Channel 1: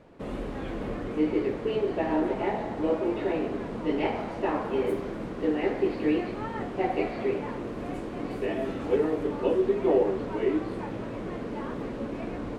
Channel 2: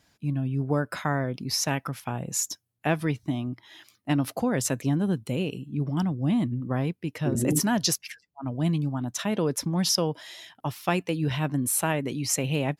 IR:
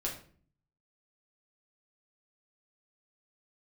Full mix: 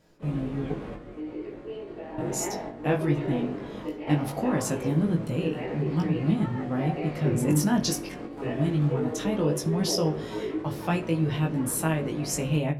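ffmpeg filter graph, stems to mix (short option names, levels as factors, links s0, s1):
-filter_complex "[0:a]alimiter=limit=0.1:level=0:latency=1:release=28,volume=0.708,asplit=2[s0][s1];[s1]volume=0.355[s2];[1:a]lowshelf=f=390:g=6,volume=0.668,asplit=3[s3][s4][s5];[s3]atrim=end=0.72,asetpts=PTS-STARTPTS,afade=t=out:st=0.716:d=0.004:c=hsin[s6];[s4]atrim=start=0.72:end=2.18,asetpts=PTS-STARTPTS,volume=0[s7];[s5]atrim=start=2.18,asetpts=PTS-STARTPTS,afade=t=in:d=0.004:c=hsin[s8];[s6][s7][s8]concat=n=3:v=0:a=1,asplit=3[s9][s10][s11];[s10]volume=0.355[s12];[s11]apad=whole_len=555175[s13];[s0][s13]sidechaingate=range=0.2:threshold=0.00141:ratio=16:detection=peak[s14];[2:a]atrim=start_sample=2205[s15];[s2][s12]amix=inputs=2:normalize=0[s16];[s16][s15]afir=irnorm=-1:irlink=0[s17];[s14][s9][s17]amix=inputs=3:normalize=0,flanger=delay=18.5:depth=2.3:speed=0.18"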